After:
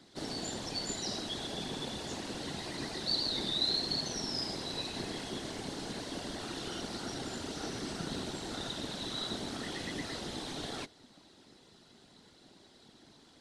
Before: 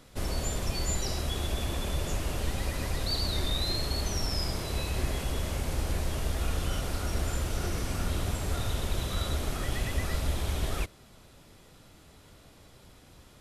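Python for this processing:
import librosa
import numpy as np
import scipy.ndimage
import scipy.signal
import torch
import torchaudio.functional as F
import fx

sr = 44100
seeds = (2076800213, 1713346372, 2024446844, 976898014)

y = fx.cabinet(x, sr, low_hz=230.0, low_slope=12, high_hz=8400.0, hz=(260.0, 520.0, 1200.0, 2400.0, 4100.0, 7200.0), db=(8, -8, -7, -7, 6, -4))
y = fx.whisperise(y, sr, seeds[0])
y = y * librosa.db_to_amplitude(-2.0)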